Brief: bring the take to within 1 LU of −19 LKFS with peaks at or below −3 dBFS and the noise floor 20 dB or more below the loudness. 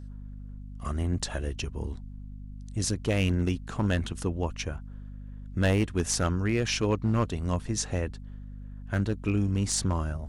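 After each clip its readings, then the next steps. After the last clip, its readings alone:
share of clipped samples 0.6%; peaks flattened at −18.0 dBFS; mains hum 50 Hz; hum harmonics up to 250 Hz; level of the hum −40 dBFS; integrated loudness −29.0 LKFS; sample peak −18.0 dBFS; target loudness −19.0 LKFS
→ clipped peaks rebuilt −18 dBFS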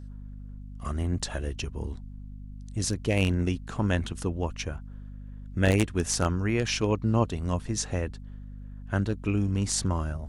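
share of clipped samples 0.0%; mains hum 50 Hz; hum harmonics up to 250 Hz; level of the hum −39 dBFS
→ mains-hum notches 50/100/150/200/250 Hz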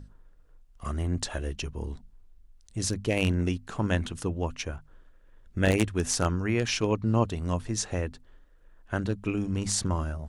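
mains hum none found; integrated loudness −29.5 LKFS; sample peak −9.5 dBFS; target loudness −19.0 LKFS
→ level +10.5 dB
brickwall limiter −3 dBFS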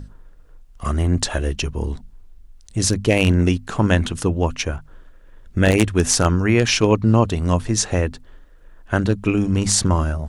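integrated loudness −19.5 LKFS; sample peak −3.0 dBFS; background noise floor −47 dBFS

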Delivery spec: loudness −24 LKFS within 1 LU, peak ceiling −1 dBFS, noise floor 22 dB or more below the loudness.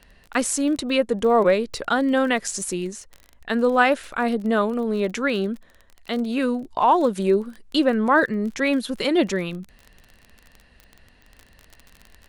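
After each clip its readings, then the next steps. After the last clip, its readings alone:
crackle rate 28 per second; integrated loudness −22.0 LKFS; sample peak −3.5 dBFS; target loudness −24.0 LKFS
→ click removal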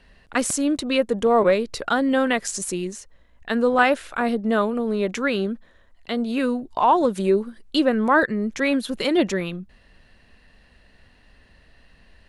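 crackle rate 0.33 per second; integrated loudness −22.0 LKFS; sample peak −3.5 dBFS; target loudness −24.0 LKFS
→ level −2 dB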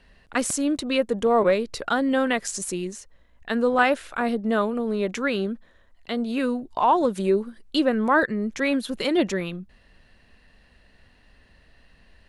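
integrated loudness −24.0 LKFS; sample peak −5.5 dBFS; background noise floor −58 dBFS

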